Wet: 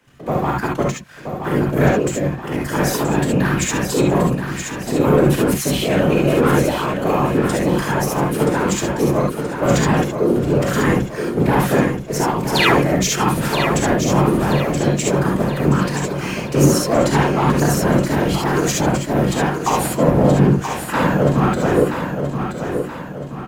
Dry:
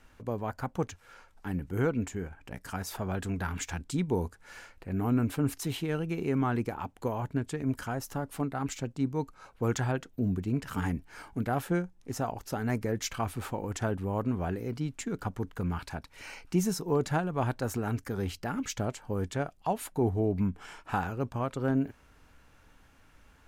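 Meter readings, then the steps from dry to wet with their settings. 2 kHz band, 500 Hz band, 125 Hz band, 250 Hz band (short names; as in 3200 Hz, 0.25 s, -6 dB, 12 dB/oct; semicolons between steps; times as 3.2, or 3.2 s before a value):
+17.5 dB, +17.0 dB, +14.0 dB, +14.5 dB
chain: octaver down 1 oct, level -2 dB; painted sound fall, 12.55–12.8, 200–4800 Hz -29 dBFS; frequency shift +140 Hz; low shelf 370 Hz -4 dB; sample leveller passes 2; whisperiser; bell 140 Hz +7 dB 0.25 oct; feedback echo 0.976 s, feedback 45%, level -7 dB; non-linear reverb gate 90 ms rising, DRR -1 dB; gain +5 dB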